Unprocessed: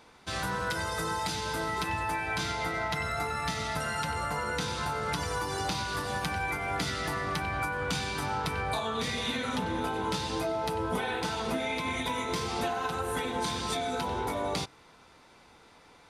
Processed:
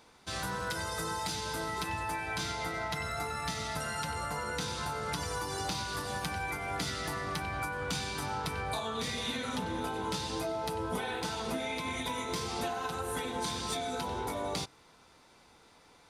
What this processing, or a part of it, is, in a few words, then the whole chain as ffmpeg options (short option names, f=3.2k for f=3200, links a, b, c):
exciter from parts: -filter_complex "[0:a]asplit=2[a][b];[b]highpass=3.3k,asoftclip=type=tanh:threshold=-30.5dB,volume=-4.5dB[c];[a][c]amix=inputs=2:normalize=0,volume=-3.5dB"